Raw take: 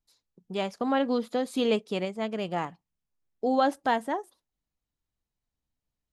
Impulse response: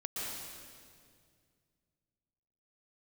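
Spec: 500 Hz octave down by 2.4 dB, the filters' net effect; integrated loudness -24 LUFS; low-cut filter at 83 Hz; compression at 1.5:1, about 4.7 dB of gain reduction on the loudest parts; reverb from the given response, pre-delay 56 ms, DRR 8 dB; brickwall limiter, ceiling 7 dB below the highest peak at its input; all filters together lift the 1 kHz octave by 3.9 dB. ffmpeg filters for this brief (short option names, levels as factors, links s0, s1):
-filter_complex "[0:a]highpass=83,equalizer=f=500:t=o:g=-4.5,equalizer=f=1000:t=o:g=7,acompressor=threshold=0.0316:ratio=1.5,alimiter=limit=0.0891:level=0:latency=1,asplit=2[s0][s1];[1:a]atrim=start_sample=2205,adelay=56[s2];[s1][s2]afir=irnorm=-1:irlink=0,volume=0.299[s3];[s0][s3]amix=inputs=2:normalize=0,volume=2.66"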